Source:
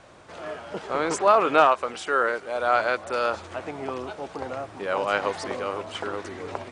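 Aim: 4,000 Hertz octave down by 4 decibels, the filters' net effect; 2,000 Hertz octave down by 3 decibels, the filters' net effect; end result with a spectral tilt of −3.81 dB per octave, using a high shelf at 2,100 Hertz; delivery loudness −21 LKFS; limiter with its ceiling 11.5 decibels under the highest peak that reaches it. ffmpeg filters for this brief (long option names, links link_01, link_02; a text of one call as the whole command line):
ffmpeg -i in.wav -af "equalizer=frequency=2000:width_type=o:gain=-6,highshelf=frequency=2100:gain=5,equalizer=frequency=4000:width_type=o:gain=-8,volume=9dB,alimiter=limit=-8dB:level=0:latency=1" out.wav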